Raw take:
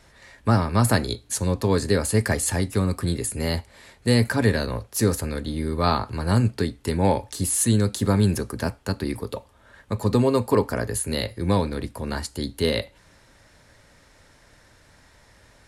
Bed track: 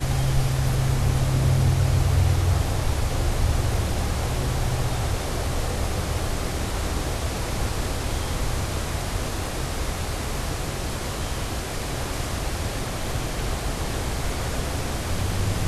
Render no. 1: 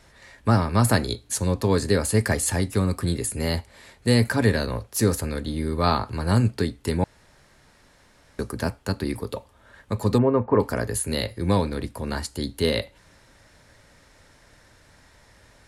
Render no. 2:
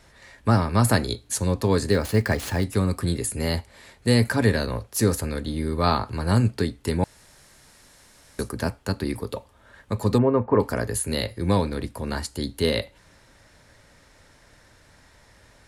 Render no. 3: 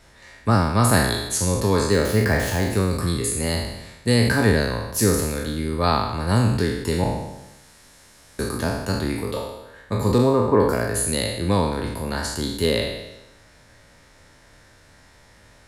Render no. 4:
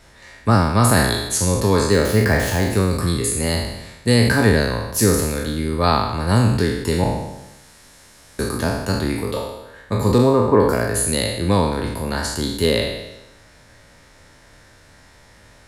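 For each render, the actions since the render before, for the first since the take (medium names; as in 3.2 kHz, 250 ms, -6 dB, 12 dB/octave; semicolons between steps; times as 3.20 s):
7.04–8.39 s: room tone; 10.18–10.60 s: low-pass 1.9 kHz 24 dB/octave
1.91–2.64 s: median filter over 5 samples; 7.03–8.49 s: peaking EQ 11 kHz +12 dB 2 oct
spectral sustain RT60 0.99 s
trim +3 dB; peak limiter -3 dBFS, peak gain reduction 2.5 dB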